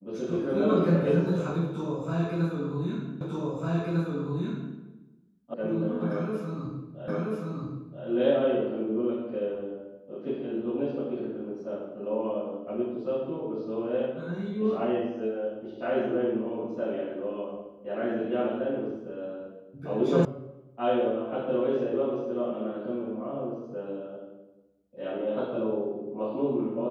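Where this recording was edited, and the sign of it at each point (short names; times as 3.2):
3.21 repeat of the last 1.55 s
5.54 sound cut off
7.08 repeat of the last 0.98 s
20.25 sound cut off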